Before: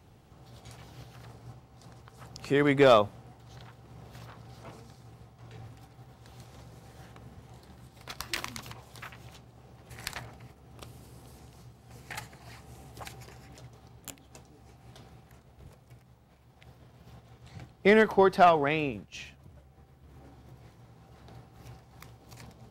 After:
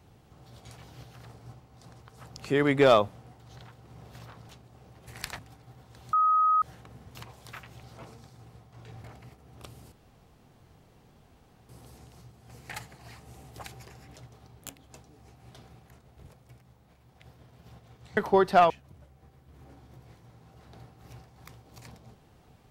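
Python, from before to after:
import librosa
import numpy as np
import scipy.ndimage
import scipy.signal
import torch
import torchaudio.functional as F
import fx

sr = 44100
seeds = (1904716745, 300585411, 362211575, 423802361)

y = fx.edit(x, sr, fx.swap(start_s=4.49, length_s=1.21, other_s=9.32, other_length_s=0.9),
    fx.bleep(start_s=6.44, length_s=0.49, hz=1260.0, db=-19.5),
    fx.cut(start_s=7.46, length_s=1.18),
    fx.insert_room_tone(at_s=11.1, length_s=1.77),
    fx.cut(start_s=17.58, length_s=0.44),
    fx.cut(start_s=18.55, length_s=0.7), tone=tone)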